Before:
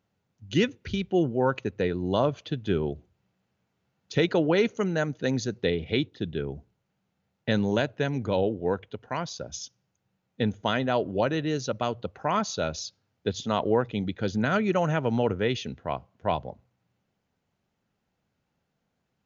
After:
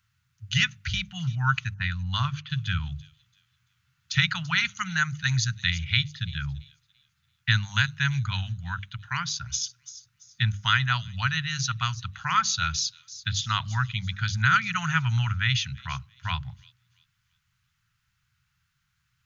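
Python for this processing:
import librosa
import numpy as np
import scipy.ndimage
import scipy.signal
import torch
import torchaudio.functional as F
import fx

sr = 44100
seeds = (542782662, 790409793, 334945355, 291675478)

y = fx.env_lowpass(x, sr, base_hz=540.0, full_db=-19.5, at=(1.74, 2.5))
y = scipy.signal.sosfilt(scipy.signal.ellip(3, 1.0, 70, [130.0, 1300.0], 'bandstop', fs=sr, output='sos'), y)
y = fx.hum_notches(y, sr, base_hz=50, count=4)
y = fx.echo_wet_highpass(y, sr, ms=337, feedback_pct=31, hz=5300.0, wet_db=-11.5)
y = y * 10.0 ** (9.0 / 20.0)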